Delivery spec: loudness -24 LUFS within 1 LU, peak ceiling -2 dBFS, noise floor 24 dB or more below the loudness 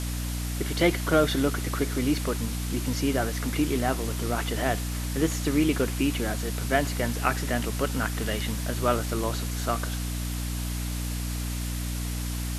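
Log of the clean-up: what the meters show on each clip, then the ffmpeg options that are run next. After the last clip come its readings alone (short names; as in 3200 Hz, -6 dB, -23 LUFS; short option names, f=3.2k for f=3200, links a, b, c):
hum 60 Hz; harmonics up to 300 Hz; hum level -28 dBFS; noise floor -31 dBFS; noise floor target -52 dBFS; loudness -27.5 LUFS; peak -7.0 dBFS; loudness target -24.0 LUFS
-> -af "bandreject=f=60:t=h:w=4,bandreject=f=120:t=h:w=4,bandreject=f=180:t=h:w=4,bandreject=f=240:t=h:w=4,bandreject=f=300:t=h:w=4"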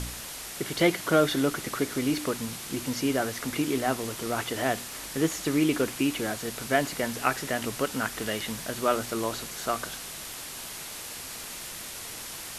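hum none; noise floor -40 dBFS; noise floor target -53 dBFS
-> -af "afftdn=nr=13:nf=-40"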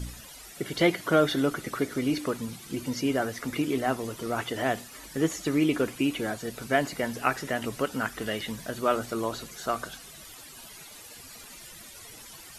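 noise floor -47 dBFS; noise floor target -53 dBFS
-> -af "afftdn=nr=6:nf=-47"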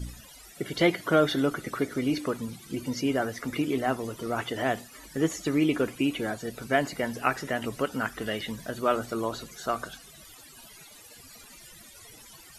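noise floor -50 dBFS; noise floor target -53 dBFS
-> -af "afftdn=nr=6:nf=-50"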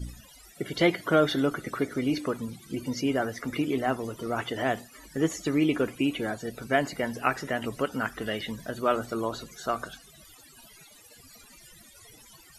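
noise floor -53 dBFS; loudness -29.0 LUFS; peak -8.0 dBFS; loudness target -24.0 LUFS
-> -af "volume=5dB"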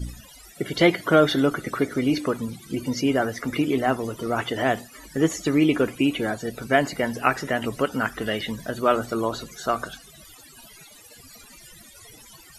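loudness -24.0 LUFS; peak -3.0 dBFS; noise floor -48 dBFS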